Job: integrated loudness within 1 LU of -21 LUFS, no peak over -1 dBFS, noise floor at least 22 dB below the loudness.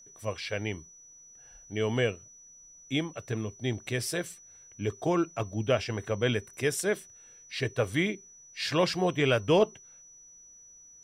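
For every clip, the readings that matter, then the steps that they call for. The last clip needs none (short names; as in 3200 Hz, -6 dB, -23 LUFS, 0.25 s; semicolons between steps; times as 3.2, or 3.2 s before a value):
steady tone 5900 Hz; tone level -51 dBFS; loudness -30.0 LUFS; peak -12.0 dBFS; loudness target -21.0 LUFS
-> notch 5900 Hz, Q 30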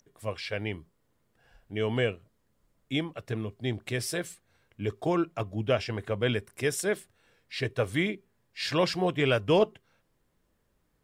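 steady tone none; loudness -30.0 LUFS; peak -12.0 dBFS; loudness target -21.0 LUFS
-> gain +9 dB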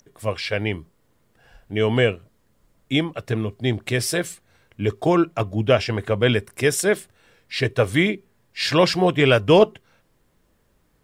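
loudness -21.0 LUFS; peak -3.0 dBFS; noise floor -64 dBFS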